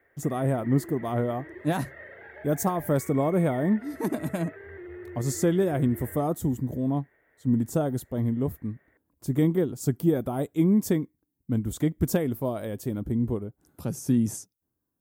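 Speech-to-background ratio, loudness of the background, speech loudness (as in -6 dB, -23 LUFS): 16.5 dB, -44.0 LUFS, -27.5 LUFS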